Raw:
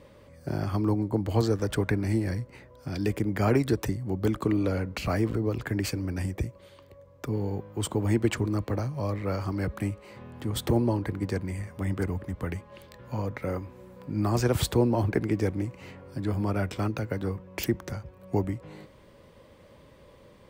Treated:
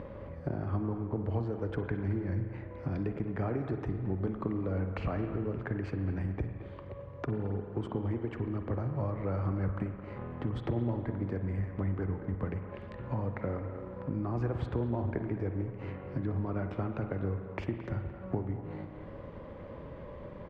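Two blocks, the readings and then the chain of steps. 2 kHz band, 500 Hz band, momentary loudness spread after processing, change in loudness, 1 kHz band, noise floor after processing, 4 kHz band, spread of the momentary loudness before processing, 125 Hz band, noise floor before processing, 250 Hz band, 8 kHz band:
−8.5 dB, −6.5 dB, 10 LU, −6.5 dB, −6.0 dB, −45 dBFS, below −15 dB, 12 LU, −4.0 dB, −54 dBFS, −6.5 dB, below −30 dB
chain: mu-law and A-law mismatch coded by A
downward compressor 6 to 1, threshold −36 dBFS, peak gain reduction 17 dB
low-shelf EQ 110 Hz +4 dB
far-end echo of a speakerphone 220 ms, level −13 dB
upward compression, threshold −37 dBFS
low-pass filter 1,600 Hz 12 dB per octave
spring reverb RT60 2 s, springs 42/51 ms, chirp 20 ms, DRR 6.5 dB
level +4 dB

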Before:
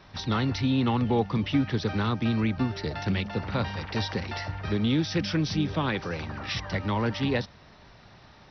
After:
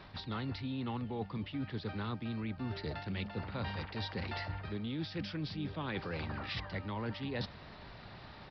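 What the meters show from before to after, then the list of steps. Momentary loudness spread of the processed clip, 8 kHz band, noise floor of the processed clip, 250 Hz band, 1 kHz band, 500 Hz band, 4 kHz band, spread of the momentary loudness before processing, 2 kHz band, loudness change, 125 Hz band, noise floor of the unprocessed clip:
3 LU, can't be measured, −52 dBFS, −12.5 dB, −11.0 dB, −11.5 dB, −10.0 dB, 7 LU, −9.5 dB, −11.5 dB, −11.0 dB, −53 dBFS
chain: reversed playback
downward compressor 10 to 1, threshold −37 dBFS, peak gain reduction 18 dB
reversed playback
downsampling to 11,025 Hz
level +1.5 dB

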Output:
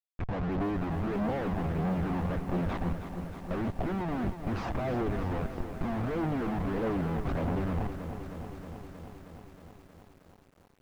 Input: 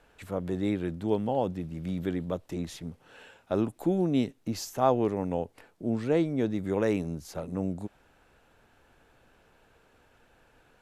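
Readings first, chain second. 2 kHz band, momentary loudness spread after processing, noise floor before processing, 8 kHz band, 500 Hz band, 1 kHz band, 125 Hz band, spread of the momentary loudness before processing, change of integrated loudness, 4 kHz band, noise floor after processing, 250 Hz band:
+3.0 dB, 13 LU, −64 dBFS, below −10 dB, −5.0 dB, −1.0 dB, +2.5 dB, 11 LU, −2.5 dB, −5.0 dB, −61 dBFS, −2.0 dB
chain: mu-law and A-law mismatch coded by mu
brickwall limiter −20 dBFS, peak gain reduction 9.5 dB
comparator with hysteresis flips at −37 dBFS
phase shifter 1.6 Hz, delay 1.2 ms, feedback 32%
low-pass filter 1,800 Hz 12 dB per octave
parametric band 700 Hz +5.5 dB 0.28 octaves
feedback echo at a low word length 315 ms, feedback 80%, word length 9 bits, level −10 dB

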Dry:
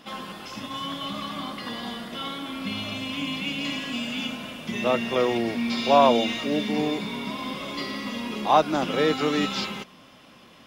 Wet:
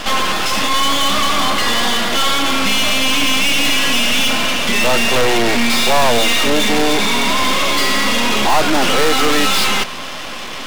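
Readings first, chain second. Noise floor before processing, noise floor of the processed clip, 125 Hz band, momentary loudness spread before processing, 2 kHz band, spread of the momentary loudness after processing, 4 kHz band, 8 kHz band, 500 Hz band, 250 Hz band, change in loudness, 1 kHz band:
−51 dBFS, −26 dBFS, +8.5 dB, 12 LU, +16.5 dB, 3 LU, +16.5 dB, +24.0 dB, +6.5 dB, +7.0 dB, +12.0 dB, +9.5 dB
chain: mid-hump overdrive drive 35 dB, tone 5,800 Hz, clips at −4.5 dBFS
half-wave rectification
level +2.5 dB

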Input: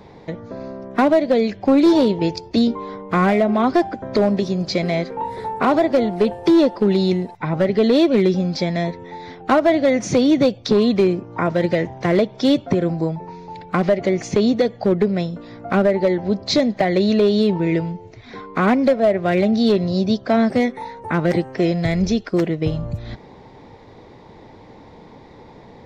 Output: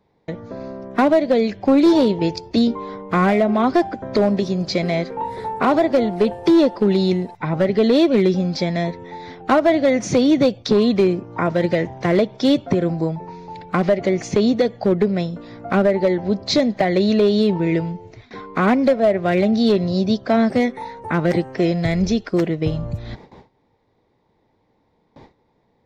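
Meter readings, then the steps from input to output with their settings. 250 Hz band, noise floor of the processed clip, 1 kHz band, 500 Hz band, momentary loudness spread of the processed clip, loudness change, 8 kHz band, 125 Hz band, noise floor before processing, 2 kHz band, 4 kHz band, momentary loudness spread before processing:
0.0 dB, −64 dBFS, 0.0 dB, 0.0 dB, 12 LU, 0.0 dB, can't be measured, 0.0 dB, −44 dBFS, 0.0 dB, 0.0 dB, 13 LU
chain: noise gate with hold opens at −31 dBFS

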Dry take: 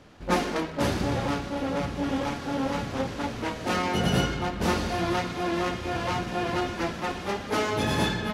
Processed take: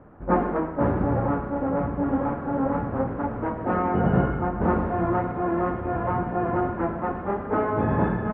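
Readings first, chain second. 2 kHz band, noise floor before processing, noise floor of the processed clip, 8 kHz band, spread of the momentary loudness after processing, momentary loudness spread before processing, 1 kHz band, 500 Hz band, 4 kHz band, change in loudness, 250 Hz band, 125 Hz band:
−4.0 dB, −37 dBFS, −33 dBFS, below −40 dB, 4 LU, 5 LU, +3.5 dB, +3.5 dB, below −25 dB, +2.5 dB, +4.0 dB, +4.0 dB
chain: inverse Chebyshev low-pass filter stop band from 7,600 Hz, stop band 80 dB
on a send: multi-tap delay 103/121 ms −13/−17 dB
on the sum: level +3.5 dB

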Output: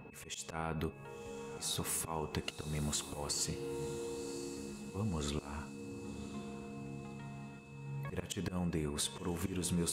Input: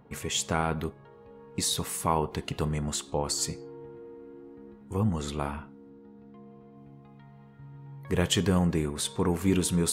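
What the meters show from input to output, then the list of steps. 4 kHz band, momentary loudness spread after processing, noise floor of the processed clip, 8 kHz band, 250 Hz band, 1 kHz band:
−9.0 dB, 11 LU, −52 dBFS, −7.0 dB, −9.5 dB, −11.5 dB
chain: volume swells 402 ms
downward compressor 4 to 1, threshold −38 dBFS, peak gain reduction 12.5 dB
steady tone 2,600 Hz −64 dBFS
feedback delay with all-pass diffusion 1,048 ms, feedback 46%, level −12 dB
level +3.5 dB

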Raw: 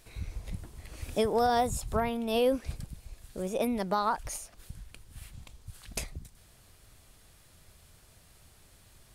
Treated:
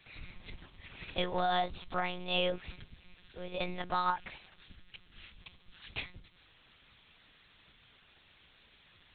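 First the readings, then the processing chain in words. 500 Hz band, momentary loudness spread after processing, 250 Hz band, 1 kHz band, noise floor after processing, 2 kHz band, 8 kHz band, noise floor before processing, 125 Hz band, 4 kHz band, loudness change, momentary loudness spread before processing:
−8.0 dB, 22 LU, −10.0 dB, −3.5 dB, −64 dBFS, +1.5 dB, below −40 dB, −59 dBFS, −7.0 dB, +3.0 dB, −4.0 dB, 23 LU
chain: tilt shelving filter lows −9 dB, about 1,200 Hz
one-pitch LPC vocoder at 8 kHz 180 Hz
level −1 dB

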